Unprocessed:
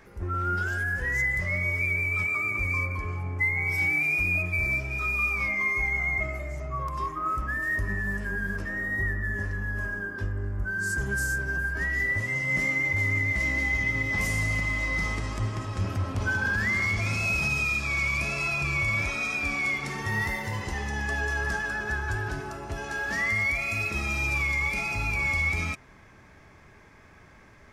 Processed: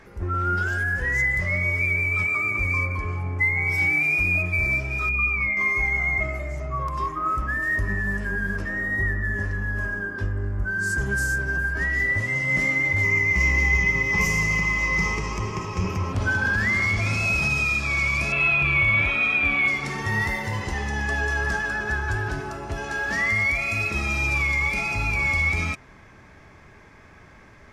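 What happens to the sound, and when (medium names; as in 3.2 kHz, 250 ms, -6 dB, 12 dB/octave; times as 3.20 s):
5.09–5.57 s: resonances exaggerated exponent 1.5
13.03–16.13 s: rippled EQ curve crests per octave 0.78, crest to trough 12 dB
18.32–19.68 s: resonant high shelf 4.1 kHz -9.5 dB, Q 3
whole clip: treble shelf 11 kHz -8.5 dB; trim +4 dB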